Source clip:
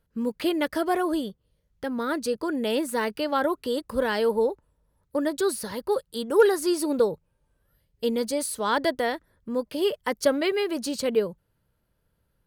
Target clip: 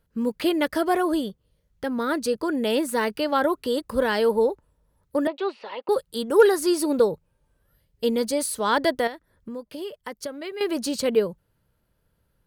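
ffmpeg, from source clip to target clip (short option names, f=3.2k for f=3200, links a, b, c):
-filter_complex "[0:a]asettb=1/sr,asplit=3[a][b][c];[a]atrim=end=5.274[d];[b]atrim=start=5.27:end=5.89,asetpts=PTS-STARTPTS,afade=t=in:d=0.004:c=qsin,afade=t=out:st=0.616:d=0.004:c=qsin,highpass=f=390:w=0.5412,highpass=f=390:w=1.3066,equalizer=f=440:t=q:w=4:g=-5,equalizer=f=800:t=q:w=4:g=4,equalizer=f=1.6k:t=q:w=4:g=-9,equalizer=f=2.7k:t=q:w=4:g=9,lowpass=f=3.1k:w=0.5412,lowpass=f=3.1k:w=1.3066[e];[c]atrim=start=5.886[f];[d][e]acrossfade=d=0.004:c1=hsin:c2=qsin[g];[g][f]acrossfade=d=0.004:c1=qsin:c2=hsin,asettb=1/sr,asplit=3[h][i][j];[h]atrim=end=9.074[k];[i]atrim=start=9.07:end=10.61,asetpts=PTS-STARTPTS,afade=t=in:d=0.004:c=qsin,afade=t=out:st=1.536:d=0.004:c=qsin,acompressor=threshold=-38dB:ratio=3[l];[j]atrim=start=10.606[m];[k][l]acrossfade=d=0.004:c1=hsin:c2=qsin[n];[n][m]acrossfade=d=0.004:c1=qsin:c2=hsin,volume=2.5dB"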